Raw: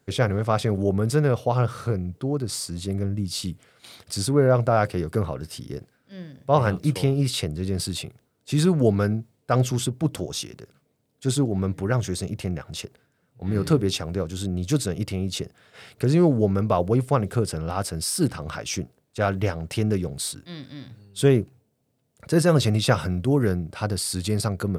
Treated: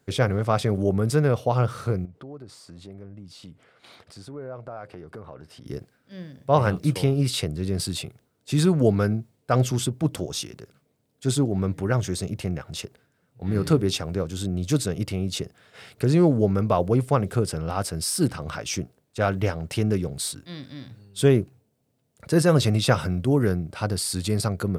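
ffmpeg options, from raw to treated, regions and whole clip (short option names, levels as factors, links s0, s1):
-filter_complex "[0:a]asettb=1/sr,asplit=3[s0][s1][s2];[s0]atrim=end=2.054[s3];[s1]atrim=start=2.05:end=5.66,asetpts=PTS-STARTPTS,afade=t=in:d=0.004:c=qsin,afade=t=out:st=3.606:d=0.004:c=qsin,acompressor=threshold=0.0126:ratio=3:attack=3.2:release=140:knee=1:detection=peak,asplit=2[s4][s5];[s5]highpass=f=720:p=1,volume=2.82,asoftclip=type=tanh:threshold=0.0841[s6];[s4][s6]amix=inputs=2:normalize=0,lowpass=f=1100:p=1,volume=0.501[s7];[s2]atrim=start=5.656[s8];[s3][s7]acrossfade=d=0.004:c1=hsin:c2=qsin[s9];[s9][s8]acrossfade=d=0.004:c1=qsin:c2=hsin"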